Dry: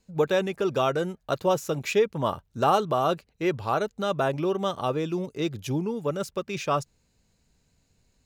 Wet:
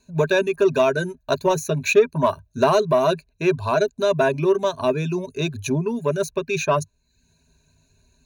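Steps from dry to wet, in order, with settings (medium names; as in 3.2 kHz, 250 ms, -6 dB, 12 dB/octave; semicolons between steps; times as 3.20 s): reverb removal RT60 0.52 s; rippled EQ curve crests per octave 1.5, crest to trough 16 dB; in parallel at -4.5 dB: saturation -18 dBFS, distortion -12 dB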